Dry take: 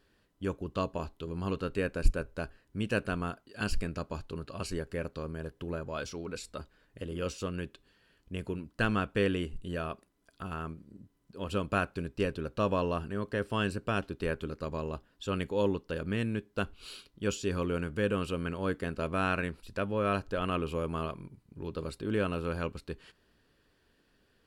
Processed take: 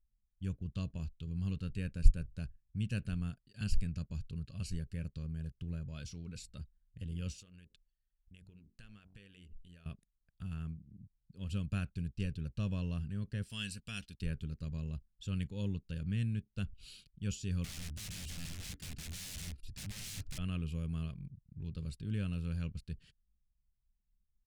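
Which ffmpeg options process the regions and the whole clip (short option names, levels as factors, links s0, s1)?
-filter_complex "[0:a]asettb=1/sr,asplit=3[s0][s1][s2];[s0]atrim=end=7.404[s3];[s1]atrim=start=7.4:end=9.86,asetpts=PTS-STARTPTS,afade=t=in:d=0.004:c=qsin,afade=t=out:st=2.456:d=0.004:c=qsin,equalizer=f=120:t=o:w=2.4:g=-12.5,bandreject=f=46.91:t=h:w=4,bandreject=f=93.82:t=h:w=4,bandreject=f=140.73:t=h:w=4,bandreject=f=187.64:t=h:w=4,bandreject=f=234.55:t=h:w=4,bandreject=f=281.46:t=h:w=4,bandreject=f=328.37:t=h:w=4,bandreject=f=375.28:t=h:w=4,bandreject=f=422.19:t=h:w=4,bandreject=f=469.1:t=h:w=4,bandreject=f=516.01:t=h:w=4,bandreject=f=562.92:t=h:w=4,bandreject=f=609.83:t=h:w=4,bandreject=f=656.74:t=h:w=4,bandreject=f=703.65:t=h:w=4,bandreject=f=750.56:t=h:w=4,bandreject=f=797.47:t=h:w=4,bandreject=f=844.38:t=h:w=4,bandreject=f=891.29:t=h:w=4,bandreject=f=938.2:t=h:w=4,bandreject=f=985.11:t=h:w=4,bandreject=f=1032.02:t=h:w=4,bandreject=f=1078.93:t=h:w=4,acompressor=threshold=0.00282:ratio=2.5:attack=3.2:release=140:knee=1:detection=peak[s4];[s2]atrim=start=9.856[s5];[s3][s4]acrossfade=d=0.004:c1=hsin:c2=qsin[s6];[s6][s5]acrossfade=d=0.004:c1=qsin:c2=hsin,asettb=1/sr,asplit=3[s7][s8][s9];[s7]atrim=end=13.434[s10];[s8]atrim=start=13.43:end=14.22,asetpts=PTS-STARTPTS,afade=t=in:d=0.004:c=qsin,afade=t=out:st=0.786:d=0.004:c=qsin,tiltshelf=f=1500:g=-9,aecho=1:1:4.2:0.34,atrim=end_sample=34839[s11];[s9]atrim=start=14.216[s12];[s10][s11]acrossfade=d=0.004:c1=hsin:c2=qsin[s13];[s13][s12]acrossfade=d=0.004:c1=qsin:c2=hsin,asettb=1/sr,asplit=3[s14][s15][s16];[s14]atrim=end=17.644[s17];[s15]atrim=start=17.64:end=20.38,asetpts=PTS-STARTPTS,afade=t=in:d=0.004:c=qsin,afade=t=out:st=2.736:d=0.004:c=qsin,aecho=1:1:2.9:0.77,atrim=end_sample=120834,aeval=exprs='(mod(42.2*val(0)+1,2)-1)/42.2':c=same[s18];[s16]atrim=start=20.376[s19];[s17][s18]acrossfade=d=0.004:c1=hsin:c2=qsin[s20];[s20][s19]acrossfade=d=0.004:c1=qsin:c2=hsin,equalizer=f=7900:t=o:w=2:g=10.5,anlmdn=0.000631,firequalizer=gain_entry='entry(150,0);entry(320,-20);entry(980,-27);entry(1700,-18);entry(2600,-14);entry(7300,-18)':delay=0.05:min_phase=1,volume=1.26"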